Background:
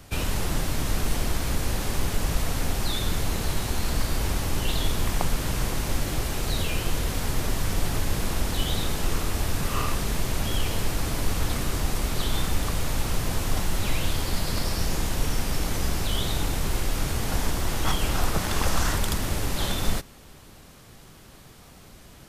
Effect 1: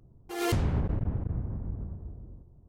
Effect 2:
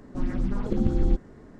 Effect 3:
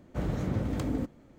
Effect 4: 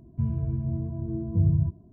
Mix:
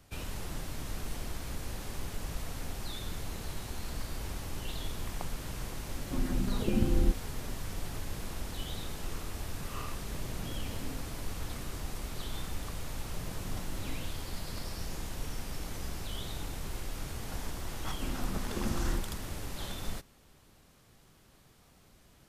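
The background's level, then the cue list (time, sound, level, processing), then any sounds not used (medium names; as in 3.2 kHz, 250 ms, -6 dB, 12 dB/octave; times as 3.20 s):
background -12.5 dB
5.96 s: add 2 -4 dB
9.96 s: add 3 -13.5 dB
12.98 s: add 3 -16 dB + spectral gate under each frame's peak -55 dB strong
17.85 s: add 2 -10.5 dB
not used: 1, 4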